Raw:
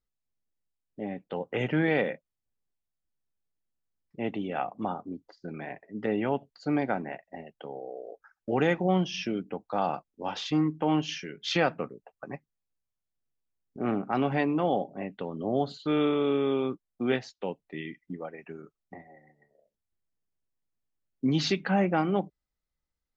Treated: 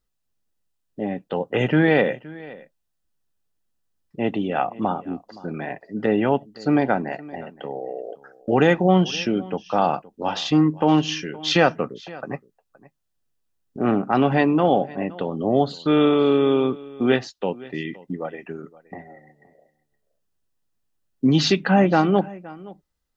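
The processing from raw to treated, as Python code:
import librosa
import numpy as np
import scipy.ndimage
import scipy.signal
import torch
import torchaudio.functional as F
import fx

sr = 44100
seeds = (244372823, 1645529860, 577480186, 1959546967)

y = fx.notch(x, sr, hz=2200.0, q=9.2)
y = y + 10.0 ** (-20.5 / 20.0) * np.pad(y, (int(519 * sr / 1000.0), 0))[:len(y)]
y = y * 10.0 ** (8.5 / 20.0)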